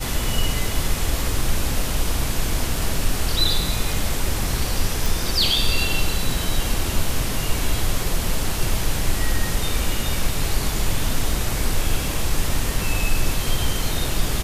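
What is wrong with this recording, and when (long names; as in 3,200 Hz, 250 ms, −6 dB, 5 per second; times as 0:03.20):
0:05.06: click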